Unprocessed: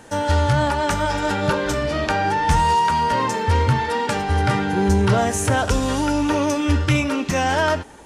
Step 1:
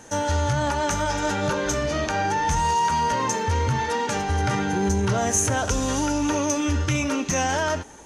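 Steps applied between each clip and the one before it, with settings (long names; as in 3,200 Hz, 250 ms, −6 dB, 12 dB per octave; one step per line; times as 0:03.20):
brickwall limiter −12.5 dBFS, peak gain reduction 5.5 dB
parametric band 6,300 Hz +14 dB 0.21 octaves
level −2.5 dB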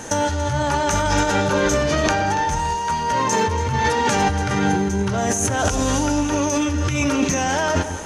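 compressor whose output falls as the input rises −28 dBFS, ratio −1
on a send: delay that swaps between a low-pass and a high-pass 142 ms, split 880 Hz, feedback 61%, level −9.5 dB
on the sum: level +7.5 dB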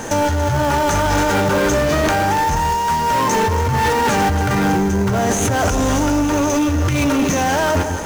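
in parallel at −3 dB: sample-rate reduction 6,400 Hz, jitter 20%
on the sum: soft clipping −14.5 dBFS, distortion −12 dB
level +2.5 dB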